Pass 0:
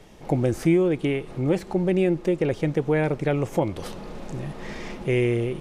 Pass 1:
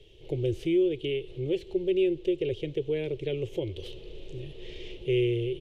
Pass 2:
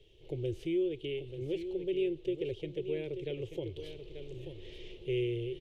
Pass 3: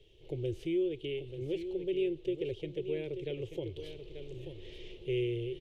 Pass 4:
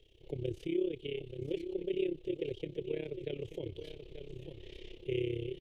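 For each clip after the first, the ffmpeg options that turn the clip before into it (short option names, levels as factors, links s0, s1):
-af "firequalizer=gain_entry='entry(110,0);entry(210,-23);entry(380,3);entry(750,-21);entry(1300,-25);entry(3000,7);entry(4900,-9);entry(8300,-14)':delay=0.05:min_phase=1,volume=0.708"
-af "aecho=1:1:886:0.335,volume=0.447"
-af anull
-af "tremolo=f=33:d=0.824,volume=1.19"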